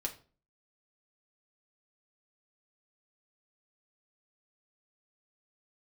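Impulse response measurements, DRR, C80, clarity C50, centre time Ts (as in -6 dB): 1.0 dB, 18.5 dB, 13.5 dB, 10 ms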